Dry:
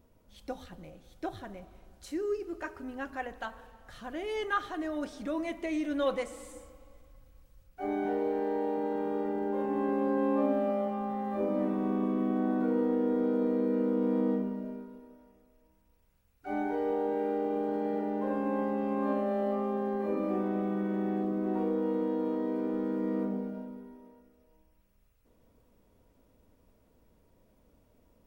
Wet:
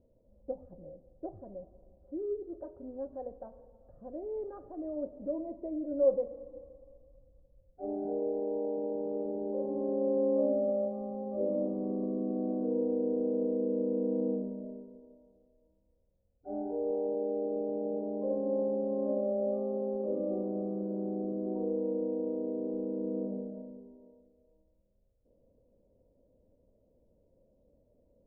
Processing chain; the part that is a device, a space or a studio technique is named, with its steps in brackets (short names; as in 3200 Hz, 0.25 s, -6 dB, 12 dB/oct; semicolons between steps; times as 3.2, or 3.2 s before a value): under water (LPF 650 Hz 24 dB/oct; bell 550 Hz +11.5 dB 0.32 oct); gain -4.5 dB